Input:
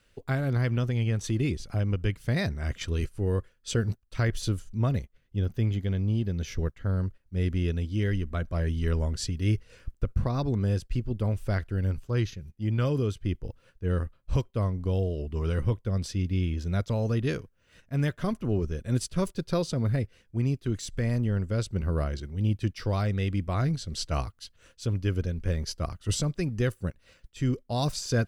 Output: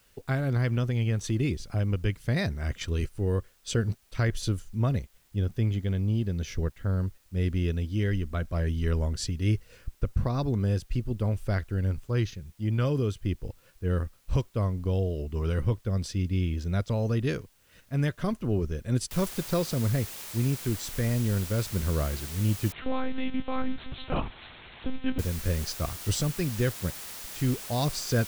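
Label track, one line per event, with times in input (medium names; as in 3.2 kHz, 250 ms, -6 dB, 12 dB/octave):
19.110000	19.110000	noise floor step -66 dB -41 dB
22.720000	25.190000	monotone LPC vocoder at 8 kHz 260 Hz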